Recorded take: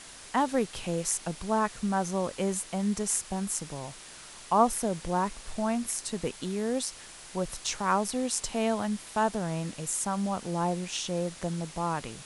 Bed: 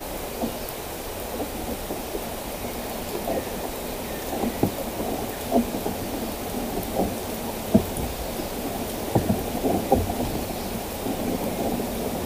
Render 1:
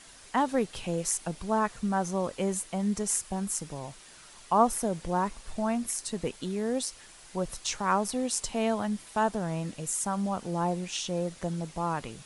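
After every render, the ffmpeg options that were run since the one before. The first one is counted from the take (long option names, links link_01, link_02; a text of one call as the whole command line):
ffmpeg -i in.wav -af "afftdn=noise_reduction=6:noise_floor=-47" out.wav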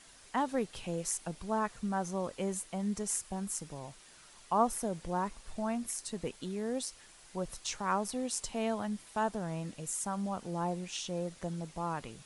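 ffmpeg -i in.wav -af "volume=-5.5dB" out.wav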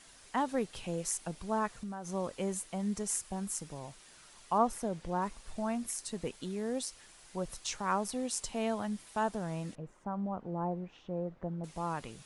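ffmpeg -i in.wav -filter_complex "[0:a]asettb=1/sr,asplit=3[link_01][link_02][link_03];[link_01]atrim=end=1.674[link_04];[link_02]atrim=start=1.67:end=2.09,asetpts=PTS-STARTPTS,afade=type=in:duration=0.004:curve=qsin,afade=type=out:start_time=0.416:duration=0.004:curve=qsin,acompressor=threshold=-37dB:ratio=6:attack=3.2:release=140:knee=1:detection=peak[link_05];[link_03]atrim=start=2.086[link_06];[link_04][link_05]acrossfade=duration=0.004:curve1=hsin:curve2=qsin[link_07];[link_07][link_06]acrossfade=duration=0.004:curve1=qsin:curve2=hsin,asettb=1/sr,asplit=3[link_08][link_09][link_10];[link_08]atrim=end=4.584[link_11];[link_09]atrim=start=4.58:end=5.22,asetpts=PTS-STARTPTS,afade=type=in:duration=0.004:curve=qsin,afade=type=out:start_time=0.636:duration=0.004:curve=qsin,highshelf=frequency=8700:gain=-11.5[link_12];[link_10]atrim=start=5.216[link_13];[link_11][link_12]acrossfade=duration=0.004:curve1=hsin:curve2=qsin[link_14];[link_14][link_13]acrossfade=duration=0.004:curve1=qsin:curve2=hsin,asettb=1/sr,asplit=3[link_15][link_16][link_17];[link_15]atrim=end=9.754[link_18];[link_16]atrim=start=9.75:end=11.64,asetpts=PTS-STARTPTS,afade=type=in:duration=0.004:curve=qsin,afade=type=out:start_time=1.886:duration=0.004:curve=qsin,lowpass=1100[link_19];[link_17]atrim=start=11.636[link_20];[link_18][link_19]acrossfade=duration=0.004:curve1=hsin:curve2=qsin[link_21];[link_21][link_20]acrossfade=duration=0.004:curve1=qsin:curve2=hsin" out.wav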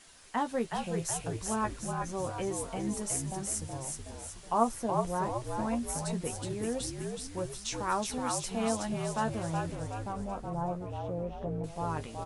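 ffmpeg -i in.wav -filter_complex "[0:a]asplit=2[link_01][link_02];[link_02]adelay=13,volume=-7dB[link_03];[link_01][link_03]amix=inputs=2:normalize=0,asplit=8[link_04][link_05][link_06][link_07][link_08][link_09][link_10][link_11];[link_05]adelay=371,afreqshift=-59,volume=-4dB[link_12];[link_06]adelay=742,afreqshift=-118,volume=-9.5dB[link_13];[link_07]adelay=1113,afreqshift=-177,volume=-15dB[link_14];[link_08]adelay=1484,afreqshift=-236,volume=-20.5dB[link_15];[link_09]adelay=1855,afreqshift=-295,volume=-26.1dB[link_16];[link_10]adelay=2226,afreqshift=-354,volume=-31.6dB[link_17];[link_11]adelay=2597,afreqshift=-413,volume=-37.1dB[link_18];[link_04][link_12][link_13][link_14][link_15][link_16][link_17][link_18]amix=inputs=8:normalize=0" out.wav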